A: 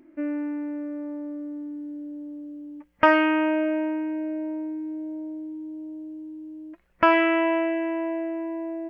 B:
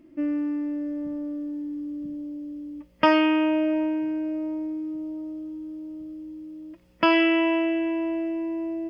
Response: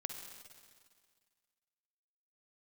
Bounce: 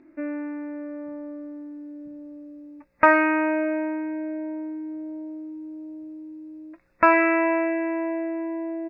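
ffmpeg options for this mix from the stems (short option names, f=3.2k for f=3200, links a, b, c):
-filter_complex "[0:a]lowpass=2.8k,tiltshelf=f=690:g=-3,volume=1dB[a];[1:a]acompressor=threshold=-30dB:ratio=6,adelay=18,volume=-10dB[b];[a][b]amix=inputs=2:normalize=0,asuperstop=centerf=3100:order=12:qfactor=4.1"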